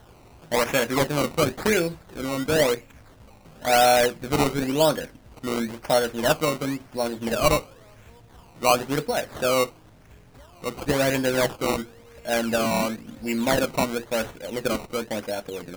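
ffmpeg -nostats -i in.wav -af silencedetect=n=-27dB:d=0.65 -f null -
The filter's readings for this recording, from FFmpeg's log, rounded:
silence_start: 2.75
silence_end: 3.65 | silence_duration: 0.90
silence_start: 7.59
silence_end: 8.63 | silence_duration: 1.04
silence_start: 9.64
silence_end: 10.66 | silence_duration: 1.01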